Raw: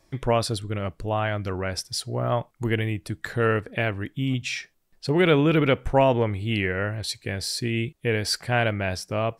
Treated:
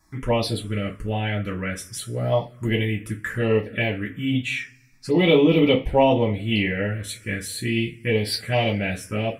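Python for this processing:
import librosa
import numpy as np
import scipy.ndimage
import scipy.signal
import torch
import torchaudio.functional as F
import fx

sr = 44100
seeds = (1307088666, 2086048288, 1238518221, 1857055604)

y = fx.rev_double_slope(x, sr, seeds[0], early_s=0.22, late_s=1.5, knee_db=-27, drr_db=-3.0)
y = fx.env_phaser(y, sr, low_hz=510.0, high_hz=1500.0, full_db=-15.5)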